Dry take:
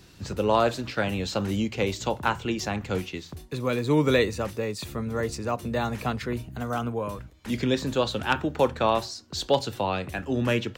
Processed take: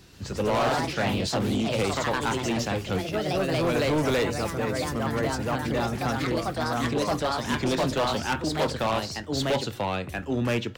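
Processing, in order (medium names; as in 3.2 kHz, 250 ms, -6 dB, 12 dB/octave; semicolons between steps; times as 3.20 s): ever faster or slower copies 126 ms, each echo +2 st, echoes 3; hard clipper -20.5 dBFS, distortion -10 dB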